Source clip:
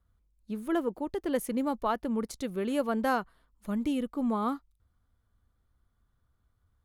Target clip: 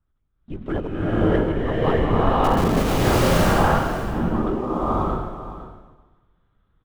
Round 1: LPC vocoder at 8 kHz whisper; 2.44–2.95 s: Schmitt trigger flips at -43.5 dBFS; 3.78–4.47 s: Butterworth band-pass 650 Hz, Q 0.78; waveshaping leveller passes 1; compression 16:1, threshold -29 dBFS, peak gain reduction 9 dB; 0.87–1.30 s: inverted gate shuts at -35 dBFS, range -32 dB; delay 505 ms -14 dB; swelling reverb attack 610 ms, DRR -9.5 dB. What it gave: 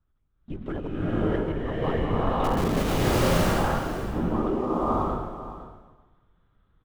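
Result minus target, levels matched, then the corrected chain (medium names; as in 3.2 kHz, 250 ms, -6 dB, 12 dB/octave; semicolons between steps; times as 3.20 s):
compression: peak gain reduction +9 dB
LPC vocoder at 8 kHz whisper; 2.44–2.95 s: Schmitt trigger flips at -43.5 dBFS; 3.78–4.47 s: Butterworth band-pass 650 Hz, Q 0.78; waveshaping leveller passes 1; 0.87–1.30 s: inverted gate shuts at -35 dBFS, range -32 dB; delay 505 ms -14 dB; swelling reverb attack 610 ms, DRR -9.5 dB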